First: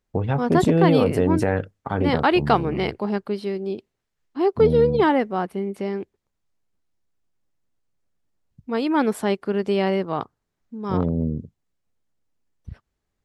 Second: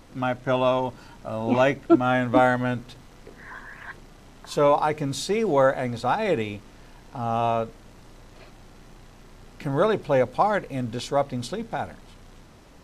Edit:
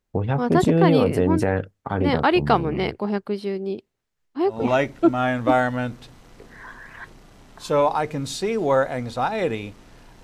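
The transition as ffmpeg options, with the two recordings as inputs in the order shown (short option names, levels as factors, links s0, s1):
-filter_complex "[0:a]apad=whole_dur=10.23,atrim=end=10.23,atrim=end=4.68,asetpts=PTS-STARTPTS[s0];[1:a]atrim=start=1.29:end=7.1,asetpts=PTS-STARTPTS[s1];[s0][s1]acrossfade=d=0.26:c1=tri:c2=tri"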